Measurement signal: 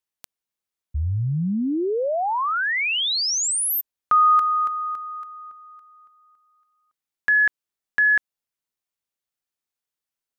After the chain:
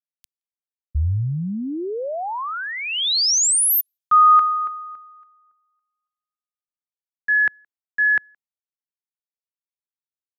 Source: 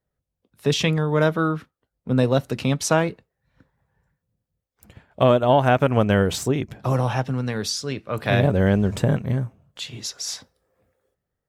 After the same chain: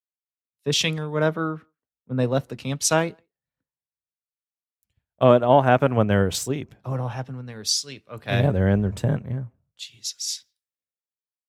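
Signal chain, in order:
far-end echo of a speakerphone 170 ms, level −30 dB
multiband upward and downward expander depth 100%
level −3.5 dB

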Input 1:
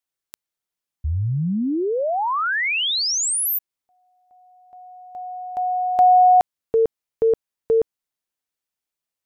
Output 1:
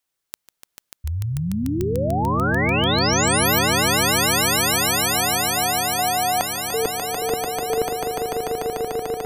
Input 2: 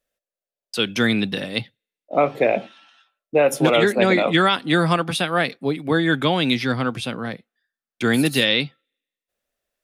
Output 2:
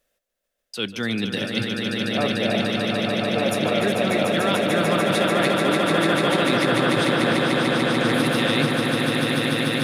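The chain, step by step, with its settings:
reversed playback
downward compressor 4 to 1, threshold −33 dBFS
reversed playback
echo that builds up and dies away 147 ms, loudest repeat 8, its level −5 dB
level +7.5 dB

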